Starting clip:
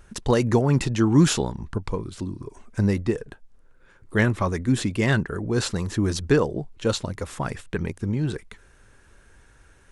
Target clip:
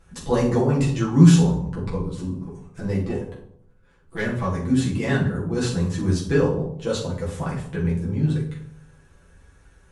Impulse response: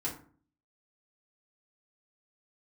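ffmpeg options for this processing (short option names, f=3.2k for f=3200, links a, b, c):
-filter_complex "[0:a]asettb=1/sr,asplit=3[a][b][c];[a]atrim=end=2.324[d];[b]atrim=start=2.32:end=4.62,asetpts=PTS-STARTPTS,afade=t=in:d=0.004:c=qsin,afade=t=out:st=2.296:d=0.004:c=qsin,aeval=exprs='if(lt(val(0),0),0.447*val(0),val(0))':c=same[e];[c]atrim=start=4.616[f];[d][e]acrossfade=d=0.004:c1=hsin:c2=qsin[g];[g][f]acrossfade=d=0.004:c1=qsin:c2=hsin[h];[1:a]atrim=start_sample=2205,asetrate=24696,aresample=44100[i];[h][i]afir=irnorm=-1:irlink=0,volume=-8dB"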